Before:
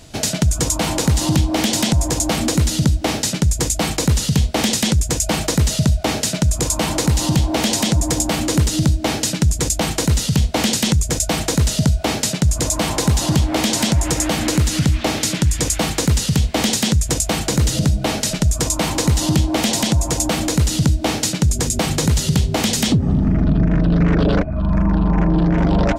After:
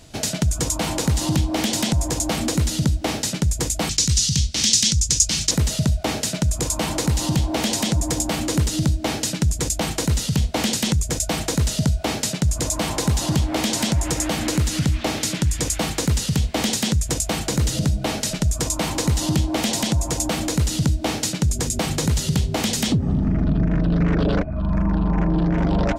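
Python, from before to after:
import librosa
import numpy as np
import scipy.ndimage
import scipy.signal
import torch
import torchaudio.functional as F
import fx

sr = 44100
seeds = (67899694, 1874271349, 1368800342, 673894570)

y = fx.curve_eq(x, sr, hz=(120.0, 720.0, 5900.0, 14000.0), db=(0, -17, 12, -7), at=(3.89, 5.51))
y = F.gain(torch.from_numpy(y), -4.0).numpy()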